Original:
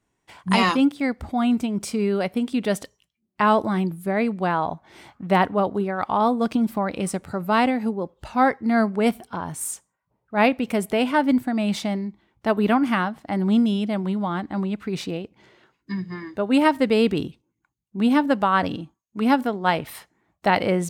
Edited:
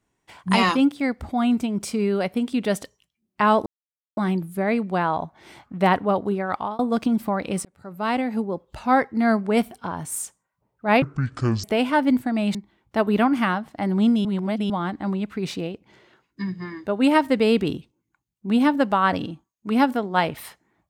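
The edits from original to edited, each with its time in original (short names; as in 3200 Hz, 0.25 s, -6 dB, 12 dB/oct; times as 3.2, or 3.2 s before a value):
3.66 insert silence 0.51 s
6.03–6.28 fade out
7.14–7.91 fade in
10.51–10.85 speed 55%
11.76–12.05 cut
13.75–14.2 reverse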